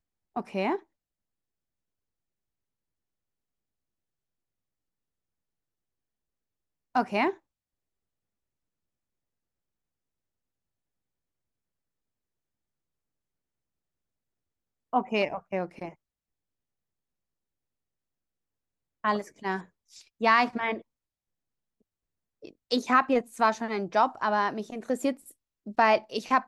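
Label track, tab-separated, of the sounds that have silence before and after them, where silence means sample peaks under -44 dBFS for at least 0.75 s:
6.950000	7.340000	sound
14.930000	15.930000	sound
19.040000	20.810000	sound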